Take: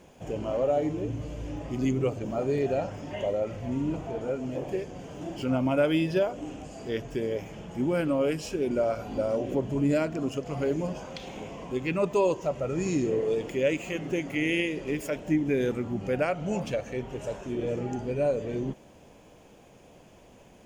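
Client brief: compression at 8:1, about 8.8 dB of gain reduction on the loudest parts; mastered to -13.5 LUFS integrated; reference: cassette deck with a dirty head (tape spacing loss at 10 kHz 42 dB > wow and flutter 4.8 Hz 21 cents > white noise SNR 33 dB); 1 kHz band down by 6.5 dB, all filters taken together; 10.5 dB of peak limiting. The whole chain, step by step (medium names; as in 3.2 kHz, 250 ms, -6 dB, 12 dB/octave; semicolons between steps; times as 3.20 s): peaking EQ 1 kHz -4.5 dB; compression 8:1, threshold -30 dBFS; peak limiter -32 dBFS; tape spacing loss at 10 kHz 42 dB; wow and flutter 4.8 Hz 21 cents; white noise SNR 33 dB; trim +28.5 dB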